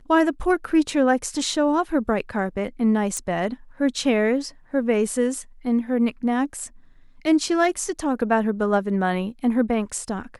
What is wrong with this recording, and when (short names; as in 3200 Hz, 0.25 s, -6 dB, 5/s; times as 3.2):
3.17 pop -14 dBFS